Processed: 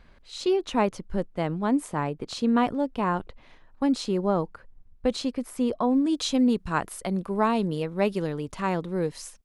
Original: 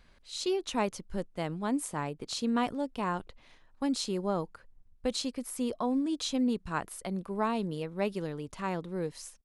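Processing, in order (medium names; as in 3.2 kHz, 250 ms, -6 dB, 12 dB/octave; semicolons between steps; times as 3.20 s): treble shelf 3.7 kHz -12 dB, from 6.05 s -3 dB; trim +7 dB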